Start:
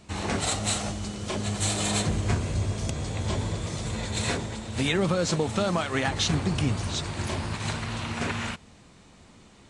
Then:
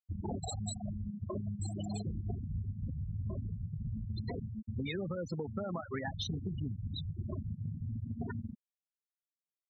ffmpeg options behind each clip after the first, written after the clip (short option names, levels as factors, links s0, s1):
-filter_complex "[0:a]asplit=2[s0][s1];[s1]adelay=942,lowpass=f=2700:p=1,volume=0.112,asplit=2[s2][s3];[s3]adelay=942,lowpass=f=2700:p=1,volume=0.5,asplit=2[s4][s5];[s5]adelay=942,lowpass=f=2700:p=1,volume=0.5,asplit=2[s6][s7];[s7]adelay=942,lowpass=f=2700:p=1,volume=0.5[s8];[s0][s2][s4][s6][s8]amix=inputs=5:normalize=0,afftfilt=real='re*gte(hypot(re,im),0.126)':imag='im*gte(hypot(re,im),0.126)':win_size=1024:overlap=0.75,acompressor=threshold=0.0178:ratio=6"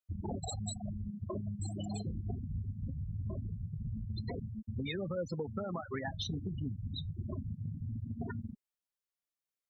-af "flanger=delay=1.6:depth=2.4:regen=82:speed=0.21:shape=sinusoidal,volume=1.68"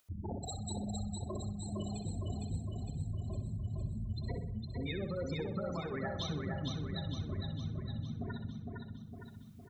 -filter_complex "[0:a]asplit=2[s0][s1];[s1]adelay=63,lowpass=f=4400:p=1,volume=0.422,asplit=2[s2][s3];[s3]adelay=63,lowpass=f=4400:p=1,volume=0.51,asplit=2[s4][s5];[s5]adelay=63,lowpass=f=4400:p=1,volume=0.51,asplit=2[s6][s7];[s7]adelay=63,lowpass=f=4400:p=1,volume=0.51,asplit=2[s8][s9];[s9]adelay=63,lowpass=f=4400:p=1,volume=0.51,asplit=2[s10][s11];[s11]adelay=63,lowpass=f=4400:p=1,volume=0.51[s12];[s2][s4][s6][s8][s10][s12]amix=inputs=6:normalize=0[s13];[s0][s13]amix=inputs=2:normalize=0,acompressor=mode=upward:threshold=0.00178:ratio=2.5,asplit=2[s14][s15];[s15]aecho=0:1:459|918|1377|1836|2295|2754|3213|3672:0.668|0.381|0.217|0.124|0.0706|0.0402|0.0229|0.0131[s16];[s14][s16]amix=inputs=2:normalize=0,volume=0.75"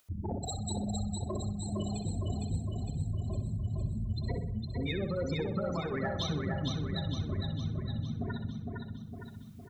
-af "aeval=exprs='0.0531*(cos(1*acos(clip(val(0)/0.0531,-1,1)))-cos(1*PI/2))+0.000376*(cos(8*acos(clip(val(0)/0.0531,-1,1)))-cos(8*PI/2))':c=same,volume=1.68"